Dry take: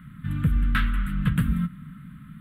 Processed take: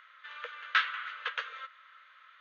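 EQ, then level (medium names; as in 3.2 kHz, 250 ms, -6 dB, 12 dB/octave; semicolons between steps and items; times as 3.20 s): brick-wall FIR band-pass 440–6700 Hz; treble shelf 4.3 kHz +10 dB; 0.0 dB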